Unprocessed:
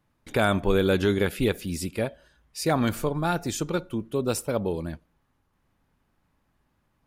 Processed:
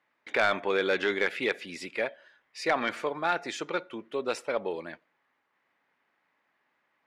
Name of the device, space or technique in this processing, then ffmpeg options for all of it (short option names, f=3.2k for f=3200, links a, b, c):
intercom: -af "highpass=470,lowpass=4.1k,equalizer=f=2k:t=o:w=0.6:g=9,asoftclip=type=tanh:threshold=-14.5dB"